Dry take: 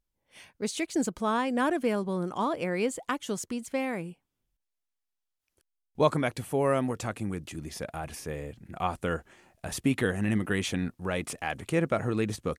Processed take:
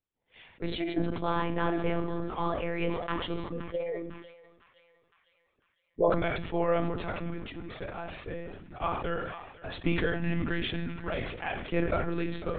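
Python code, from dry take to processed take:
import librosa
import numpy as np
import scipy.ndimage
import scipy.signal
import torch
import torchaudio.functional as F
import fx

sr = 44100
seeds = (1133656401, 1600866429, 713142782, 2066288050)

y = fx.envelope_sharpen(x, sr, power=3.0, at=(3.46, 6.09), fade=0.02)
y = scipy.signal.sosfilt(scipy.signal.butter(4, 99.0, 'highpass', fs=sr, output='sos'), y)
y = fx.echo_thinned(y, sr, ms=507, feedback_pct=60, hz=860.0, wet_db=-16)
y = fx.rev_schroeder(y, sr, rt60_s=0.42, comb_ms=27, drr_db=9.0)
y = fx.lpc_monotone(y, sr, seeds[0], pitch_hz=170.0, order=16)
y = fx.sustainer(y, sr, db_per_s=50.0)
y = y * 10.0 ** (-2.5 / 20.0)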